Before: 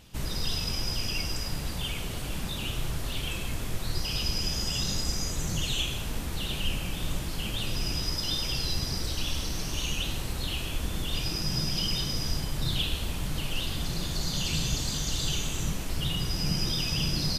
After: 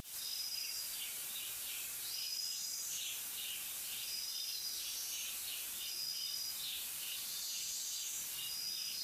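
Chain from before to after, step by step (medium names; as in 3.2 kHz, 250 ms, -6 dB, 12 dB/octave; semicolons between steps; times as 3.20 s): rattle on loud lows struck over -30 dBFS, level -36 dBFS; dynamic bell 3.2 kHz, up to -4 dB, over -48 dBFS, Q 6; upward compressor, threshold -33 dBFS; differentiator; reverberation RT60 0.50 s, pre-delay 83 ms, DRR -8.5 dB; vibrato 0.48 Hz 11 cents; peak limiter -23.5 dBFS, peak gain reduction 8.5 dB; plain phase-vocoder stretch 0.52×; trim -5.5 dB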